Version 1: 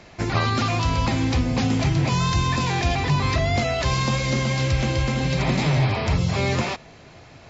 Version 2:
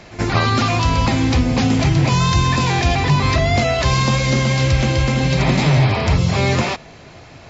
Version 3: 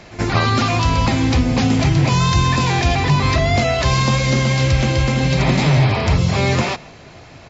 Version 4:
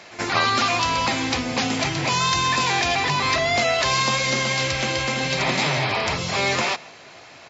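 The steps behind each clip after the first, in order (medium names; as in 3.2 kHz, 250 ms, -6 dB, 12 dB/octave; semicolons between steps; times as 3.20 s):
pre-echo 77 ms -17 dB; trim +5.5 dB
echo from a far wall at 25 m, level -22 dB
high-pass 810 Hz 6 dB/octave; trim +1 dB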